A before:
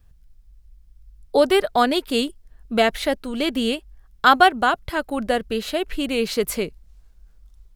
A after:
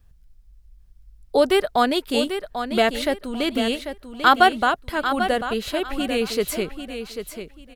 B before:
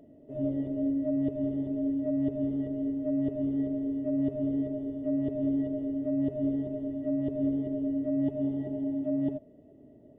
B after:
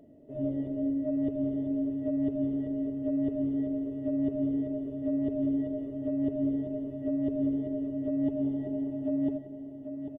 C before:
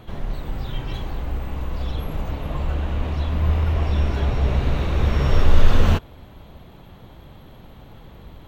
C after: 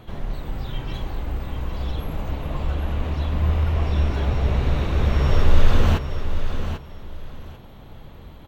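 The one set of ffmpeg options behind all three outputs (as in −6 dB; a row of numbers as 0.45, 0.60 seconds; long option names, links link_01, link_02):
-af "aecho=1:1:793|1586|2379:0.355|0.0816|0.0188,volume=-1dB"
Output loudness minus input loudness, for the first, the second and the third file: −0.5, −0.5, −1.0 LU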